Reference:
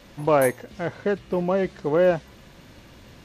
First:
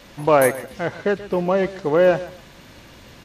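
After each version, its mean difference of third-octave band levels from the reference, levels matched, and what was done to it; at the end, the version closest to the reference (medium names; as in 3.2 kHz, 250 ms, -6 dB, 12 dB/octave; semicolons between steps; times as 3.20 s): 2.5 dB: bass shelf 460 Hz -4.5 dB; feedback delay 131 ms, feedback 25%, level -16 dB; trim +5.5 dB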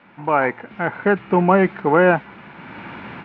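6.0 dB: level rider gain up to 16 dB; cabinet simulation 160–2700 Hz, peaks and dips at 190 Hz +4 dB, 540 Hz -6 dB, 870 Hz +9 dB, 1.4 kHz +9 dB, 2.3 kHz +6 dB; trim -2 dB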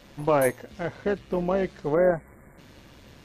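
1.5 dB: spectral selection erased 1.94–2.58 s, 2.3–7.1 kHz; AM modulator 140 Hz, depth 35%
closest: third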